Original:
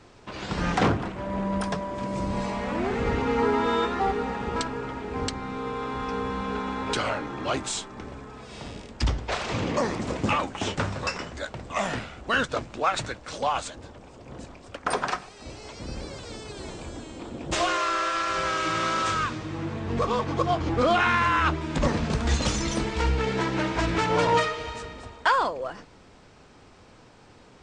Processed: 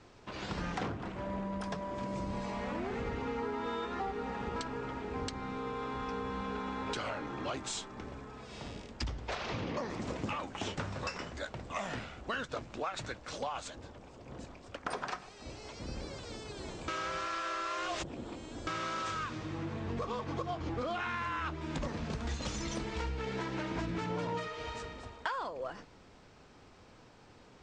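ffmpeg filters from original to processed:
ffmpeg -i in.wav -filter_complex "[0:a]asettb=1/sr,asplit=3[link_01][link_02][link_03];[link_01]atrim=end=9.354[link_04];[link_02]atrim=start=9.35:end=9.9,asetpts=PTS-STARTPTS,afade=type=in:duration=0.004:curve=qsin,afade=type=out:start_time=0.546:duration=0.004:curve=qsin,lowpass=frequency=6000:width=0.5412,lowpass=frequency=6000:width=1.3066[link_05];[link_03]atrim=start=9.896[link_06];[link_04][link_05]acrossfade=duration=0.004:curve1=hsin:curve2=qsin[link_07];[link_07][link_06]acrossfade=duration=0.004:curve1=qsin:curve2=hsin,asettb=1/sr,asplit=3[link_08][link_09][link_10];[link_08]atrim=end=23.714[link_11];[link_09]atrim=start=23.71:end=24.48,asetpts=PTS-STARTPTS,afade=type=in:duration=0.004:curve=qsin,afade=type=out:start_time=0.766:duration=0.004:curve=qsin,equalizer=frequency=190:width=0.78:gain=9[link_12];[link_10]atrim=start=24.476[link_13];[link_11][link_12]acrossfade=duration=0.004:curve1=hsin:curve2=qsin[link_14];[link_14][link_13]acrossfade=duration=0.004:curve1=qsin:curve2=hsin,asplit=3[link_15][link_16][link_17];[link_15]atrim=end=16.882[link_18];[link_16]atrim=start=16.878:end=18.672,asetpts=PTS-STARTPTS,areverse[link_19];[link_17]atrim=start=18.668[link_20];[link_18][link_19]acrossfade=duration=0.004:curve1=hsin:curve2=hsin[link_21];[link_21][link_20]acrossfade=duration=0.004:curve1=hsin:curve2=hsin,lowpass=frequency=8100:width=0.5412,lowpass=frequency=8100:width=1.3066,acompressor=threshold=-28dB:ratio=6,volume=-5.5dB" out.wav

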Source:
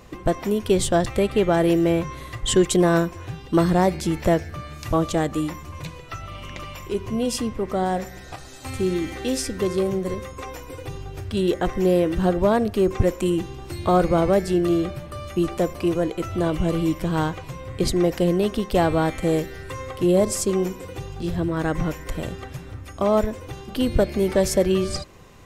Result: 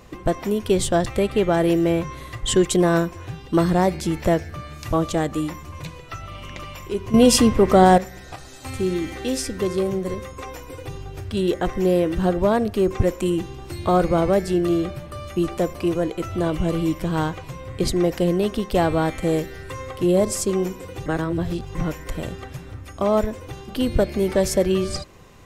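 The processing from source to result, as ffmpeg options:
ffmpeg -i in.wav -filter_complex "[0:a]asplit=5[link_01][link_02][link_03][link_04][link_05];[link_01]atrim=end=7.142[link_06];[link_02]atrim=start=7.138:end=7.982,asetpts=PTS-STARTPTS,volume=10.5dB[link_07];[link_03]atrim=start=7.978:end=21.062[link_08];[link_04]atrim=start=21.058:end=21.752,asetpts=PTS-STARTPTS,areverse[link_09];[link_05]atrim=start=21.748[link_10];[link_06][link_07]acrossfade=duration=0.004:curve1=hsin:curve2=hsin[link_11];[link_11][link_08]acrossfade=duration=0.004:curve1=hsin:curve2=hsin[link_12];[link_12][link_09]acrossfade=duration=0.004:curve1=hsin:curve2=hsin[link_13];[link_13][link_10]acrossfade=duration=0.004:curve1=hsin:curve2=hsin" out.wav

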